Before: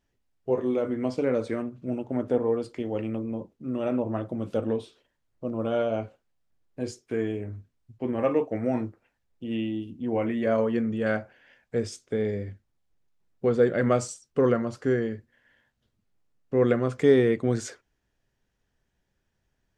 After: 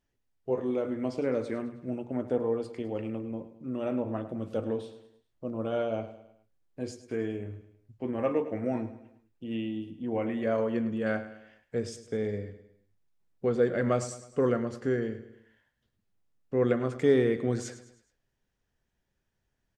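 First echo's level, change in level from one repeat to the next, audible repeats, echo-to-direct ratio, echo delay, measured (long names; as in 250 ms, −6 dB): −13.5 dB, −6.5 dB, 4, −12.5 dB, 105 ms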